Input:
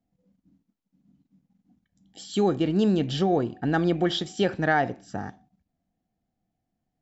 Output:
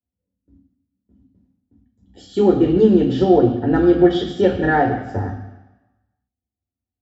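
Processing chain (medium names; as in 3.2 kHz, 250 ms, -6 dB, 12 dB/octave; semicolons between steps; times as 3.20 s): gate with hold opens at -54 dBFS; reverberation RT60 1.0 s, pre-delay 3 ms, DRR -0.5 dB; trim -9.5 dB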